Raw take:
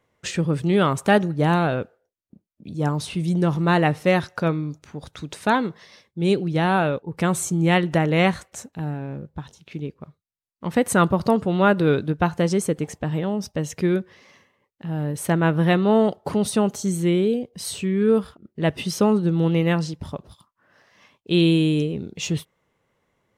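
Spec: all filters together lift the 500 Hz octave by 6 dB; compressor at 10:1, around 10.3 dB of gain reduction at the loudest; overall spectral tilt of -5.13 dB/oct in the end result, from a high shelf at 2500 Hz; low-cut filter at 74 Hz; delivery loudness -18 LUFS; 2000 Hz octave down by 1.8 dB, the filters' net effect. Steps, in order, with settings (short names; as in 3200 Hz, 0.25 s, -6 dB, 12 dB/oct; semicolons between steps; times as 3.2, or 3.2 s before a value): HPF 74 Hz; bell 500 Hz +7.5 dB; bell 2000 Hz -6.5 dB; high shelf 2500 Hz +7.5 dB; compressor 10:1, threshold -19 dBFS; gain +7 dB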